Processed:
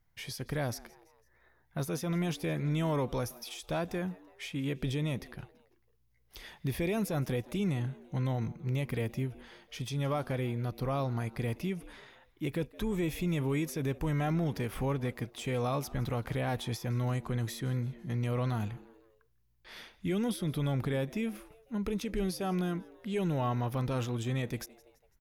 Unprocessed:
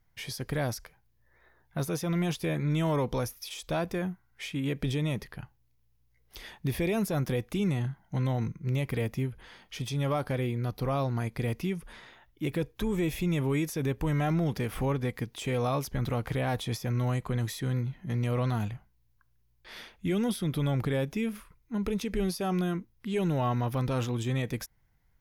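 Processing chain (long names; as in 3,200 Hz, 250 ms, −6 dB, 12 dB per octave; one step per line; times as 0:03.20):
echo with shifted repeats 167 ms, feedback 49%, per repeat +110 Hz, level −22 dB
level −3 dB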